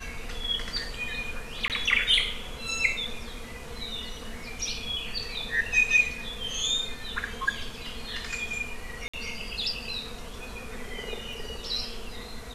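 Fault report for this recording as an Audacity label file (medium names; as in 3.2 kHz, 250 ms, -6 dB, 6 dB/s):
1.680000	1.700000	dropout 18 ms
9.080000	9.130000	dropout 55 ms
11.330000	11.330000	dropout 2.3 ms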